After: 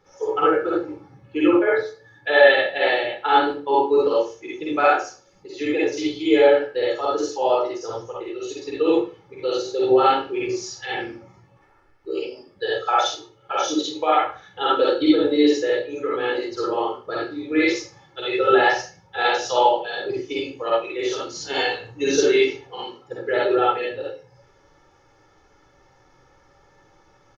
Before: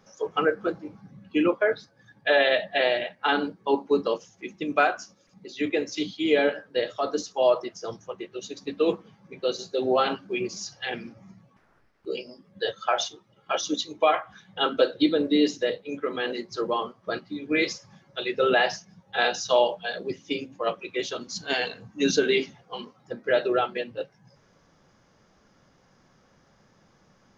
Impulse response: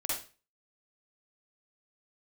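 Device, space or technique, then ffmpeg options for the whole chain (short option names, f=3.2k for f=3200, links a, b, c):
microphone above a desk: -filter_complex "[0:a]aecho=1:1:2.3:0.71[a];[1:a]atrim=start_sample=2205[b];[a][b]afir=irnorm=-1:irlink=0,highshelf=f=3.9k:g=-6"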